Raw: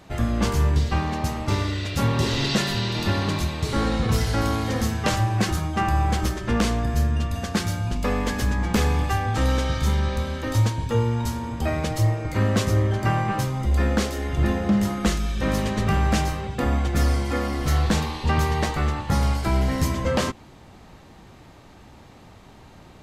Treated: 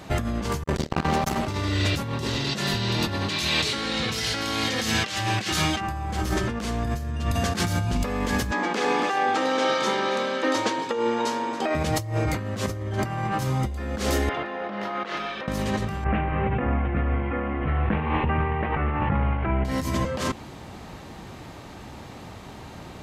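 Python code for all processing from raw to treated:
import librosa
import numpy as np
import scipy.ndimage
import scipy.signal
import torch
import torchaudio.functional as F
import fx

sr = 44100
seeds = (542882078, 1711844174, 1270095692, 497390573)

y = fx.chain(x, sr, fx.lower_of_two(delay_ms=5.1),
    fx.transformer_sat(knee_hz=350.0), at=(0.63, 1.47))
y = fx.weighting(y, sr, curve='D', at=(3.28, 5.79), fade=0.02)
y = fx.dmg_noise_colour(y, sr, seeds[0], colour='pink', level_db=-62.0, at=(3.28, 5.79), fade=0.02)
y = fx.chain(y, sr, fx.highpass(hz=280.0, slope=24),
    fx.air_absorb(metres=81.0),
    fx.echo_single(ms=277, db=-14.5), at=(8.51, 11.75))
y = fx.chain(y, sr, fx.highpass(hz=590.0, slope=12),
    fx.air_absorb(metres=330.0),
    fx.over_compress(threshold_db=-38.0, ratio=-1.0), at=(14.29, 15.48))
y = fx.chain(y, sr, fx.steep_lowpass(hz=2700.0, slope=48),
    fx.over_compress(threshold_db=-25.0, ratio=-1.0), at=(16.04, 19.65))
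y = fx.highpass(y, sr, hz=57.0, slope=6)
y = fx.over_compress(y, sr, threshold_db=-29.0, ratio=-1.0)
y = F.gain(torch.from_numpy(y), 3.5).numpy()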